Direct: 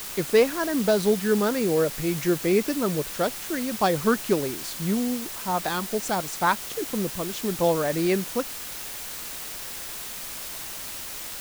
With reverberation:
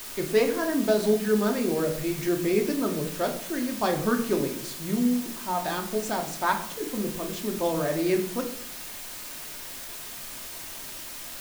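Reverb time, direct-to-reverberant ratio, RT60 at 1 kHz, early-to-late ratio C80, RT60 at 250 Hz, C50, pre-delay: 0.65 s, 2.5 dB, 0.55 s, 13.5 dB, 0.95 s, 10.0 dB, 3 ms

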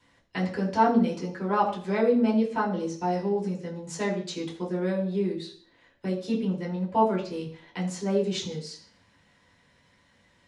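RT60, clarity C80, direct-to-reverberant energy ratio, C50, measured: 0.50 s, 12.0 dB, −6.0 dB, 9.0 dB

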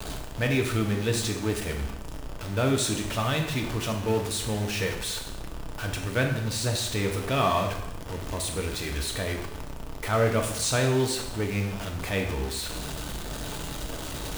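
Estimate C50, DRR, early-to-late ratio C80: 6.0 dB, 2.0 dB, 9.0 dB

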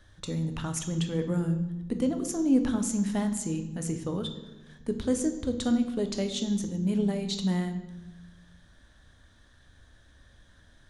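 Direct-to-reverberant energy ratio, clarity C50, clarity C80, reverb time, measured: 6.5 dB, 9.5 dB, 12.5 dB, 1.1 s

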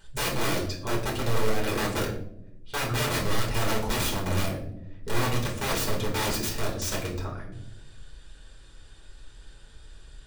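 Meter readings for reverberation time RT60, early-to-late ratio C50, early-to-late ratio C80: non-exponential decay, 7.0 dB, 10.5 dB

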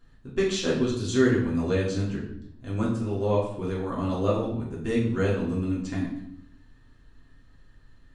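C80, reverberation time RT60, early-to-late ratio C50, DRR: 8.0 dB, 0.75 s, 4.5 dB, −6.0 dB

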